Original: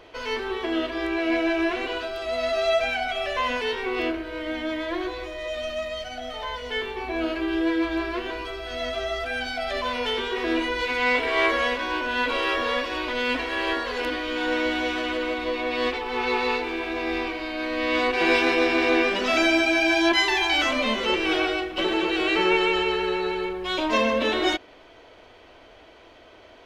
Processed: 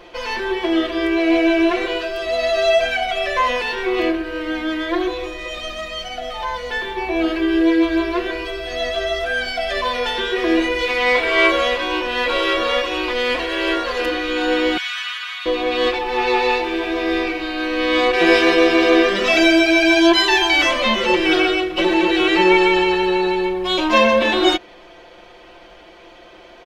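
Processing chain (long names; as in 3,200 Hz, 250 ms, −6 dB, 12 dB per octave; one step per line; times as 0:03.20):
0:14.77–0:15.46: Butterworth high-pass 1,200 Hz 36 dB per octave
comb filter 5.7 ms, depth 80%
level +4.5 dB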